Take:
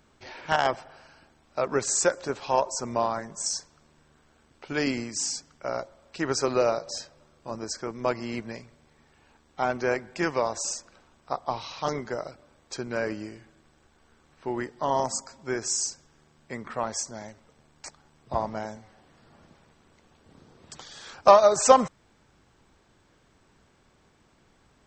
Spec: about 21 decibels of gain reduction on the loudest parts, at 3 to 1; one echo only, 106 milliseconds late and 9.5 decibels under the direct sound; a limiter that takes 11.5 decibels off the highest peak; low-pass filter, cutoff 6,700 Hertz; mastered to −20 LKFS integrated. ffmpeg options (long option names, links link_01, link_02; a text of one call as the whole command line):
ffmpeg -i in.wav -af "lowpass=6700,acompressor=threshold=-40dB:ratio=3,alimiter=level_in=9dB:limit=-24dB:level=0:latency=1,volume=-9dB,aecho=1:1:106:0.335,volume=24.5dB" out.wav